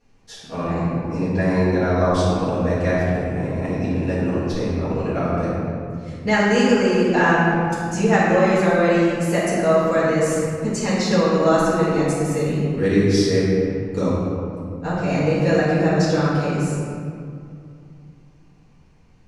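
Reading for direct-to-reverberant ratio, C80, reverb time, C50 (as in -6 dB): -11.5 dB, -0.5 dB, 2.4 s, -2.5 dB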